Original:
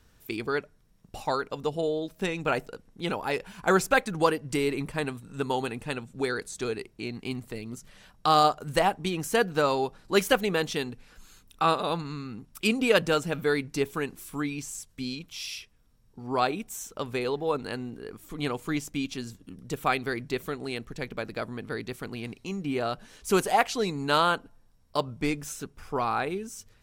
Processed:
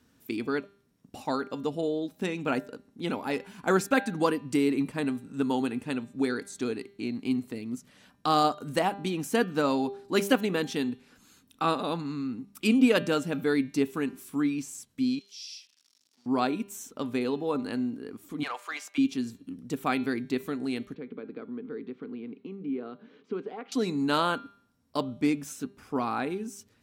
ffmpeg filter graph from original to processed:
ffmpeg -i in.wav -filter_complex "[0:a]asettb=1/sr,asplit=3[link_01][link_02][link_03];[link_01]atrim=end=15.194[link_04];[link_02]atrim=start=15.19:end=16.26,asetpts=PTS-STARTPTS,afade=type=in:duration=0.004:curve=qsin,afade=type=out:start_time=1.066:duration=0.004:curve=qsin,aeval=exprs='val(0)+0.5*0.00631*sgn(val(0))':channel_layout=same,bandpass=frequency=5100:width_type=q:width=2.5,acompressor=mode=upward:threshold=-56dB:ratio=2.5:attack=3.2:release=140:knee=2.83:detection=peak[link_05];[link_03]atrim=start=16.256[link_06];[link_04][link_05]acrossfade=duration=0.004:curve1=hsin:curve2=qsin[link_07];[link_07][link_06]acrossfade=duration=0.004:curve1=qsin:curve2=hsin,asettb=1/sr,asplit=3[link_08][link_09][link_10];[link_08]atrim=end=18.434[link_11];[link_09]atrim=start=18.43:end=18.98,asetpts=PTS-STARTPTS,afade=type=in:duration=0.004:curve=qsin,afade=type=out:start_time=0.546:duration=0.004:curve=qsin,highpass=frequency=640:width=0.5412,highpass=frequency=640:width=1.3066,asplit=2[link_12][link_13];[link_13]highpass=frequency=720:poles=1,volume=13dB,asoftclip=type=tanh:threshold=-19.5dB[link_14];[link_12][link_14]amix=inputs=2:normalize=0,lowpass=frequency=2900:poles=1,volume=-6dB[link_15];[link_10]atrim=start=18.976[link_16];[link_11][link_15]acrossfade=duration=0.004:curve1=hsin:curve2=qsin[link_17];[link_17][link_16]acrossfade=duration=0.004:curve1=qsin:curve2=hsin,asettb=1/sr,asplit=3[link_18][link_19][link_20];[link_18]atrim=end=20.944[link_21];[link_19]atrim=start=20.94:end=23.72,asetpts=PTS-STARTPTS,afade=type=in:duration=0.004:curve=qsin,afade=type=out:start_time=2.776:duration=0.004:curve=qsin,acompressor=threshold=-41dB:ratio=2:attack=3.2:release=140:knee=1:detection=peak,highpass=frequency=150:width=0.5412,highpass=frequency=150:width=1.3066,equalizer=frequency=440:width_type=q:width=4:gain=10,equalizer=frequency=630:width_type=q:width=4:gain=-8,equalizer=frequency=890:width_type=q:width=4:gain=-5,equalizer=frequency=1800:width_type=q:width=4:gain=-6,equalizer=frequency=2700:width_type=q:width=4:gain=-6,lowpass=frequency=3000:width=0.5412,lowpass=frequency=3000:width=1.3066[link_22];[link_20]atrim=start=23.716[link_23];[link_21][link_22]acrossfade=duration=0.004:curve1=hsin:curve2=qsin[link_24];[link_24][link_23]acrossfade=duration=0.004:curve1=qsin:curve2=hsin,highpass=97,equalizer=frequency=260:width_type=o:width=0.53:gain=12.5,bandreject=frequency=199.3:width_type=h:width=4,bandreject=frequency=398.6:width_type=h:width=4,bandreject=frequency=597.9:width_type=h:width=4,bandreject=frequency=797.2:width_type=h:width=4,bandreject=frequency=996.5:width_type=h:width=4,bandreject=frequency=1195.8:width_type=h:width=4,bandreject=frequency=1395.1:width_type=h:width=4,bandreject=frequency=1594.4:width_type=h:width=4,bandreject=frequency=1793.7:width_type=h:width=4,bandreject=frequency=1993:width_type=h:width=4,bandreject=frequency=2192.3:width_type=h:width=4,bandreject=frequency=2391.6:width_type=h:width=4,bandreject=frequency=2590.9:width_type=h:width=4,bandreject=frequency=2790.2:width_type=h:width=4,bandreject=frequency=2989.5:width_type=h:width=4,bandreject=frequency=3188.8:width_type=h:width=4,bandreject=frequency=3388.1:width_type=h:width=4,bandreject=frequency=3587.4:width_type=h:width=4,bandreject=frequency=3786.7:width_type=h:width=4,bandreject=frequency=3986:width_type=h:width=4,bandreject=frequency=4185.3:width_type=h:width=4,bandreject=frequency=4384.6:width_type=h:width=4,volume=-3.5dB" out.wav

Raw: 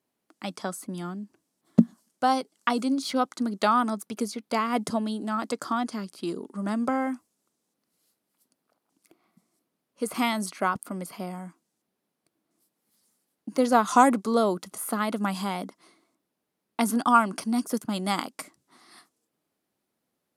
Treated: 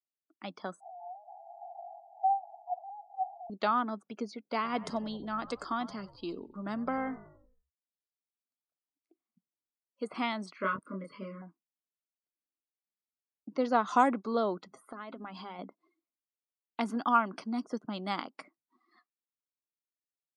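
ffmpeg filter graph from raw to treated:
ffmpeg -i in.wav -filter_complex "[0:a]asettb=1/sr,asplit=3[link_01][link_02][link_03];[link_01]atrim=end=0.804[link_04];[link_02]atrim=start=0.8:end=3.5,asetpts=PTS-STARTPTS,afade=type=in:duration=0.004:curve=qsin,afade=type=out:start_time=2.696:duration=0.004:curve=qsin,aeval=exprs='val(0)+0.5*0.0944*sgn(val(0))':channel_layout=same,acrusher=bits=9:dc=4:mix=0:aa=0.000001,asuperpass=centerf=750:order=8:qfactor=4.5[link_05];[link_03]atrim=start=3.496[link_06];[link_04][link_05]acrossfade=duration=0.004:curve1=hsin:curve2=qsin[link_07];[link_07][link_06]acrossfade=duration=0.004:curve1=qsin:curve2=hsin,asettb=1/sr,asplit=3[link_08][link_09][link_10];[link_08]atrim=end=4.554[link_11];[link_09]atrim=start=4.55:end=10.05,asetpts=PTS-STARTPTS,afade=type=in:duration=0.004:curve=qsin,afade=type=out:start_time=5.496:duration=0.004:curve=qsin,highshelf=frequency=3800:gain=7,asplit=7[link_12][link_13][link_14][link_15][link_16][link_17][link_18];[link_13]adelay=93,afreqshift=-55,volume=-16.5dB[link_19];[link_14]adelay=186,afreqshift=-110,volume=-20.9dB[link_20];[link_15]adelay=279,afreqshift=-165,volume=-25.4dB[link_21];[link_16]adelay=372,afreqshift=-220,volume=-29.8dB[link_22];[link_17]adelay=465,afreqshift=-275,volume=-34.2dB[link_23];[link_18]adelay=558,afreqshift=-330,volume=-38.7dB[link_24];[link_12][link_19][link_20][link_21][link_22][link_23][link_24]amix=inputs=7:normalize=0,atrim=end_sample=242550[link_25];[link_10]atrim=start=10.046[link_26];[link_11][link_25]acrossfade=duration=0.004:curve1=hsin:curve2=qsin[link_27];[link_27][link_26]acrossfade=duration=0.004:curve1=qsin:curve2=hsin,asettb=1/sr,asplit=3[link_28][link_29][link_30];[link_28]atrim=end=10.574[link_31];[link_29]atrim=start=10.57:end=11.42,asetpts=PTS-STARTPTS,afade=type=in:duration=0.004:curve=qsin,afade=type=out:start_time=0.846:duration=0.004:curve=qsin,asuperstop=centerf=780:order=20:qfactor=2.4,asplit=2[link_32][link_33];[link_33]adelay=26,volume=-2dB[link_34];[link_32][link_34]amix=inputs=2:normalize=0,atrim=end_sample=37485[link_35];[link_30]atrim=start=11.416[link_36];[link_31][link_35]acrossfade=duration=0.004:curve1=hsin:curve2=qsin[link_37];[link_37][link_36]acrossfade=duration=0.004:curve1=qsin:curve2=hsin,asettb=1/sr,asplit=3[link_38][link_39][link_40];[link_38]atrim=end=14.674[link_41];[link_39]atrim=start=14.67:end=15.59,asetpts=PTS-STARTPTS,afade=type=in:duration=0.004:curve=qsin,afade=type=out:start_time=0.916:duration=0.004:curve=qsin,bandreject=frequency=50:width_type=h:width=6,bandreject=frequency=100:width_type=h:width=6,bandreject=frequency=150:width_type=h:width=6,bandreject=frequency=200:width_type=h:width=6,bandreject=frequency=250:width_type=h:width=6,bandreject=frequency=300:width_type=h:width=6,aecho=1:1:7.5:0.31,atrim=end_sample=40572,acompressor=threshold=-32dB:ratio=5:attack=3.2:release=140:knee=1:detection=peak[link_42];[link_40]atrim=start=15.586[link_43];[link_41][link_42]acrossfade=duration=0.004:curve1=hsin:curve2=qsin[link_44];[link_44][link_43]acrossfade=duration=0.004:curve1=qsin:curve2=hsin,lowpass=4500,afftdn=noise_reduction=25:noise_floor=-49,equalizer=frequency=87:width_type=o:width=1.9:gain=-8,volume=-6dB" out.wav

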